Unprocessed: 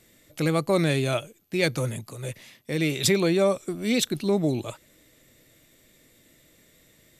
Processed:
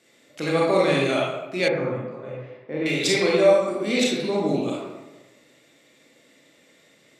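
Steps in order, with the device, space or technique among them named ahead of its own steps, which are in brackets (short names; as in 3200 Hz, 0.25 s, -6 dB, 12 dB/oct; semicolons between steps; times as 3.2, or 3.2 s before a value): supermarket ceiling speaker (BPF 260–6800 Hz; reverb RT60 1.1 s, pre-delay 27 ms, DRR -5 dB); 1.68–2.86 LPF 1400 Hz 12 dB/oct; gain -1 dB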